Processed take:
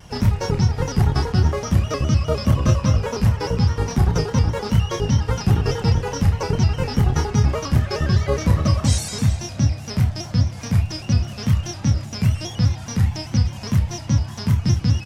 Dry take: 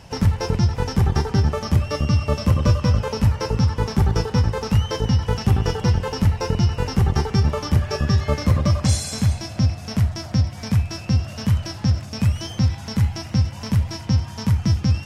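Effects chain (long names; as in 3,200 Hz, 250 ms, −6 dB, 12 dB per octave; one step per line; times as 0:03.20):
spectral magnitudes quantised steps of 15 dB
double-tracking delay 30 ms −6.5 dB
pitch modulation by a square or saw wave square 4.9 Hz, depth 100 cents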